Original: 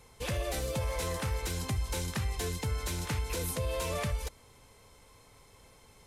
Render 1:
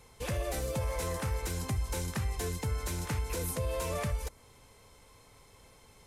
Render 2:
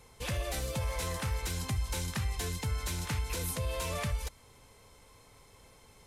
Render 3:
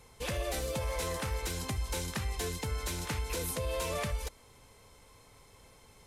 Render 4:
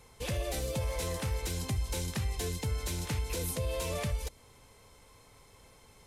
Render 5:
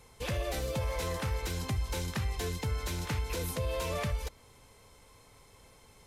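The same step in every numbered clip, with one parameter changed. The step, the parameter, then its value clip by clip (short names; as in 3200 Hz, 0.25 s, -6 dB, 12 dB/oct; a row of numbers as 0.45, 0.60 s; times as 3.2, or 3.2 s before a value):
dynamic EQ, frequency: 3500, 420, 110, 1300, 9200 Hz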